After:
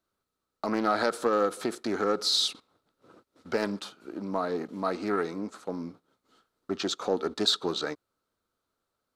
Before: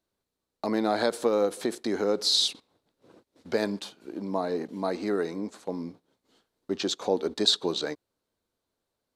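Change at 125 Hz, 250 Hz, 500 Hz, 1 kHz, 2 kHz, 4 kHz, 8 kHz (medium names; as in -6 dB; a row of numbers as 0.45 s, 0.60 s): -1.0 dB, -1.5 dB, -2.0 dB, +2.5 dB, +1.5 dB, -2.0 dB, -2.0 dB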